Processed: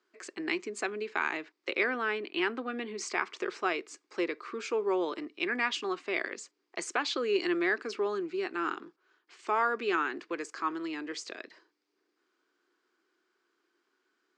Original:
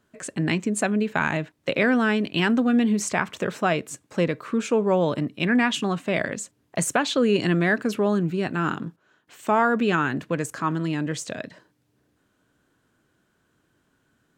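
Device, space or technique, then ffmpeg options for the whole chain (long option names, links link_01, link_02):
phone speaker on a table: -filter_complex "[0:a]highpass=frequency=340:width=0.5412,highpass=frequency=340:width=1.3066,equalizer=frequency=360:width_type=q:width=4:gain=9,equalizer=frequency=590:width_type=q:width=4:gain=-9,equalizer=frequency=1200:width_type=q:width=4:gain=5,equalizer=frequency=2200:width_type=q:width=4:gain=6,equalizer=frequency=4800:width_type=q:width=4:gain=9,lowpass=frequency=7000:width=0.5412,lowpass=frequency=7000:width=1.3066,asettb=1/sr,asplit=3[link_01][link_02][link_03];[link_01]atrim=end=1.844[link_04];[link_02]atrim=start=1.84:end=2.98,asetpts=PTS-STARTPTS,afade=type=in:duration=0.004:curve=qsin,afade=type=out:start_time=1.136:duration=0.004:curve=qsin,equalizer=frequency=6200:width=1.6:gain=-13[link_05];[link_03]atrim=start=2.976[link_06];[link_04][link_05]acrossfade=duration=0.004:curve1=hsin:curve2=qsin[link_07];[link_07][link_06]acrossfade=duration=0.004:curve1=qsin:curve2=hsin,volume=-8.5dB"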